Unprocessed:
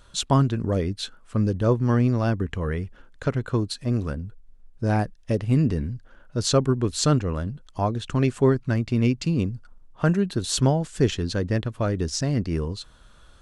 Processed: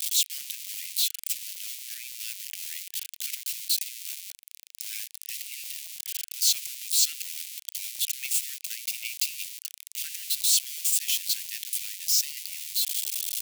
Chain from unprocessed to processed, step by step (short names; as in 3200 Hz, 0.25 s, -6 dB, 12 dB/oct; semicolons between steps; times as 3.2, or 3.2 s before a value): switching spikes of -17.5 dBFS; steep high-pass 2200 Hz 48 dB/oct